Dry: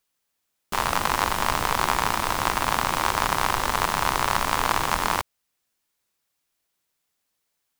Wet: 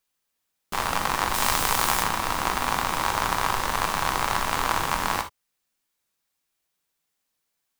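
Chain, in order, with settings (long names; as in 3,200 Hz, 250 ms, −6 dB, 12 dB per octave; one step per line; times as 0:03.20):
0:01.33–0:02.02: high-shelf EQ 3,400 Hz → 5,300 Hz +10 dB
reverb whose tail is shaped and stops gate 90 ms flat, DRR 6 dB
level −2.5 dB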